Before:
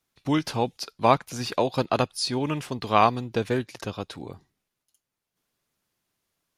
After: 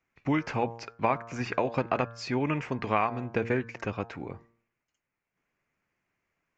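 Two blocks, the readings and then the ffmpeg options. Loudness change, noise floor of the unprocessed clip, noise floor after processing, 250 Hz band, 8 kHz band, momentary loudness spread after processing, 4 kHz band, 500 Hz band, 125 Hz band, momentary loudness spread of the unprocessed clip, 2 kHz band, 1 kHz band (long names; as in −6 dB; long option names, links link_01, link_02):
−5.0 dB, −85 dBFS, below −85 dBFS, −3.0 dB, −13.0 dB, 8 LU, −12.5 dB, −4.5 dB, −3.0 dB, 14 LU, −0.5 dB, −6.0 dB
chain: -af "highshelf=frequency=2900:width_type=q:width=3:gain=-8.5,bandreject=frequency=115.9:width_type=h:width=4,bandreject=frequency=231.8:width_type=h:width=4,bandreject=frequency=347.7:width_type=h:width=4,bandreject=frequency=463.6:width_type=h:width=4,bandreject=frequency=579.5:width_type=h:width=4,bandreject=frequency=695.4:width_type=h:width=4,bandreject=frequency=811.3:width_type=h:width=4,bandreject=frequency=927.2:width_type=h:width=4,bandreject=frequency=1043.1:width_type=h:width=4,bandreject=frequency=1159:width_type=h:width=4,bandreject=frequency=1274.9:width_type=h:width=4,bandreject=frequency=1390.8:width_type=h:width=4,bandreject=frequency=1506.7:width_type=h:width=4,bandreject=frequency=1622.6:width_type=h:width=4,bandreject=frequency=1738.5:width_type=h:width=4,acompressor=threshold=-23dB:ratio=4,aresample=16000,aresample=44100"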